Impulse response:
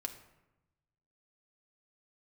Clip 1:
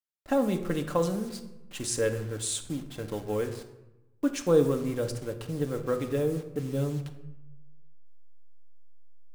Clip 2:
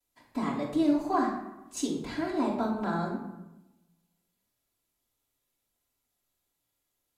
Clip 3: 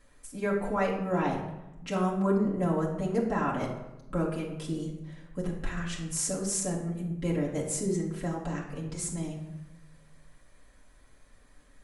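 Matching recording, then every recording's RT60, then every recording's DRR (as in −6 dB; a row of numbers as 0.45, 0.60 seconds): 1; 0.95, 0.95, 0.95 seconds; 4.5, −15.5, −5.5 decibels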